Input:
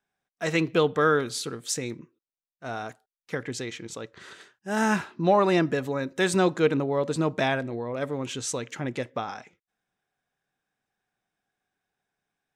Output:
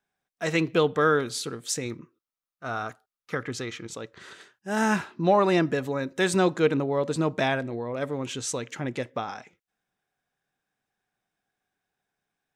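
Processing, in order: 1.85–3.87 thirty-one-band EQ 100 Hz +5 dB, 1250 Hz +11 dB, 8000 Hz -4 dB

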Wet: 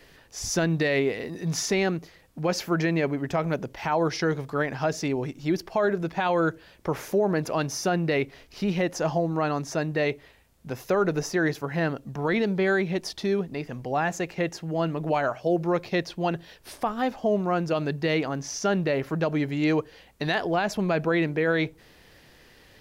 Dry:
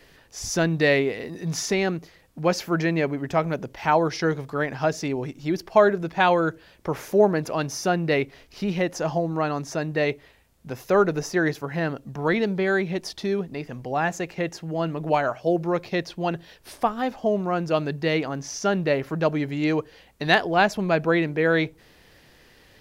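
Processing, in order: limiter -15 dBFS, peak gain reduction 11 dB

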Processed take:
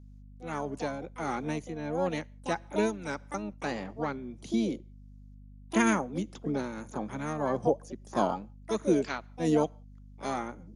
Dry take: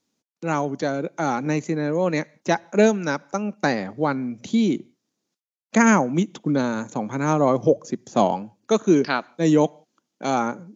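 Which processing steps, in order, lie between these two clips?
harmoniser +7 st -7 dB; tremolo triangle 1.6 Hz, depth 55%; hum 50 Hz, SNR 18 dB; gain -8.5 dB

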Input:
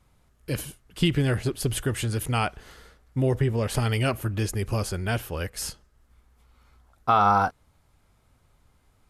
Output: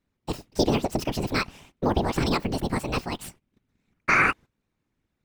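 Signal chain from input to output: median filter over 5 samples; gate -54 dBFS, range -15 dB; whisperiser; speed mistake 45 rpm record played at 78 rpm

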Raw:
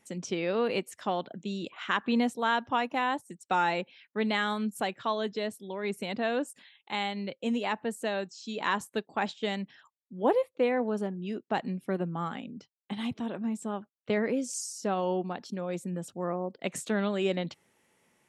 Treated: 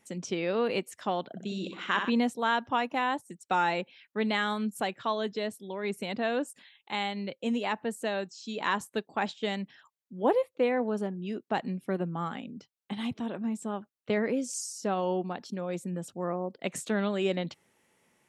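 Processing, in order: 1.3–2.1 flutter echo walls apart 10.7 m, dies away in 0.61 s

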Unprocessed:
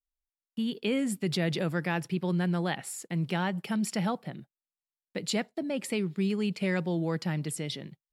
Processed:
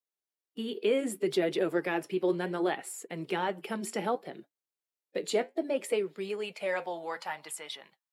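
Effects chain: bin magnitudes rounded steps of 15 dB; dynamic EQ 4900 Hz, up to -6 dB, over -52 dBFS, Q 1.7; flange 0.65 Hz, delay 3.8 ms, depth 7.7 ms, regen -67%; high-pass sweep 380 Hz -> 880 Hz, 5.53–7.29; gain +3.5 dB

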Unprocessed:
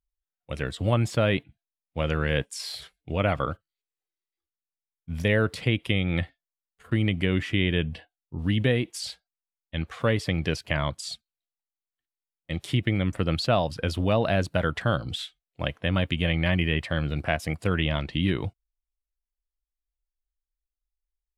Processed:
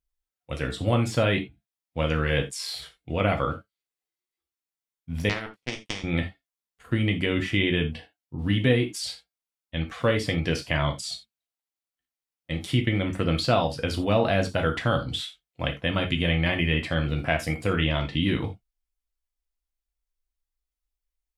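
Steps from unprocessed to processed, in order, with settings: 5.29–6.04 power-law curve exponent 3; non-linear reverb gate 0.11 s falling, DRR 3 dB

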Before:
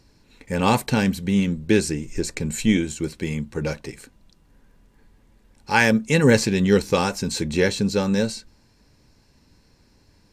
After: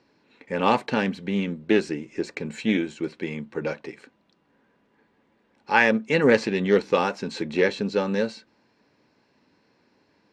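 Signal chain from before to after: BPF 260–3000 Hz; Doppler distortion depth 0.1 ms

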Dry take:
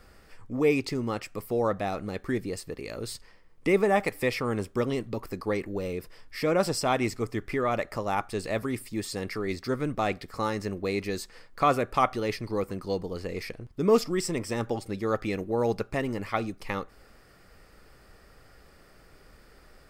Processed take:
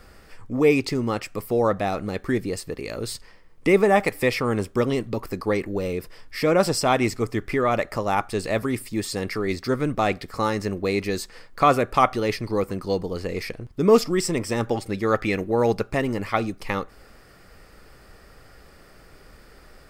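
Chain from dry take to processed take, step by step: 14.66–15.72 dynamic EQ 2000 Hz, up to +5 dB, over -47 dBFS, Q 1.2; gain +5.5 dB

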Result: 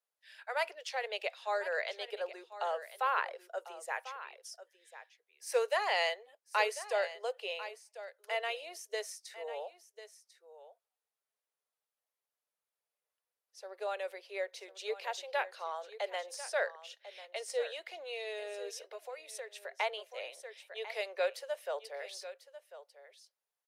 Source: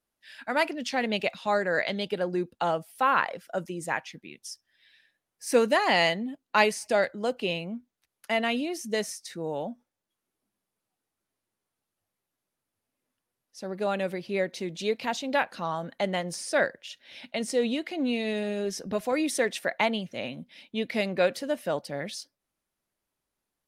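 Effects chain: on a send: echo 1.045 s -14 dB; 18.79–19.79 on the sum: compressor 10:1, threshold -32 dBFS, peak gain reduction 12 dB; steep high-pass 420 Hz 72 dB/oct; gain -8 dB

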